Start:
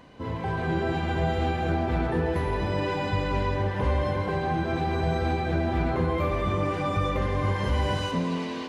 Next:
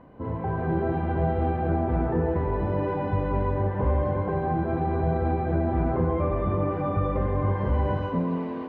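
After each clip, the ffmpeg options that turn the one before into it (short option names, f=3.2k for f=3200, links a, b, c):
-af "lowpass=1.1k,volume=1.5dB"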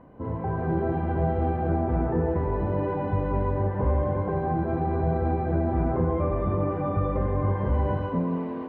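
-af "highshelf=f=2.9k:g=-9"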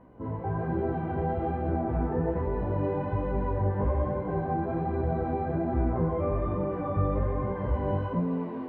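-af "flanger=delay=15.5:depth=5:speed=1.2"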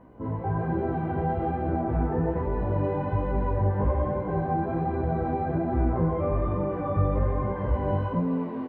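-filter_complex "[0:a]asplit=2[a][b];[b]adelay=19,volume=-13dB[c];[a][c]amix=inputs=2:normalize=0,volume=2dB"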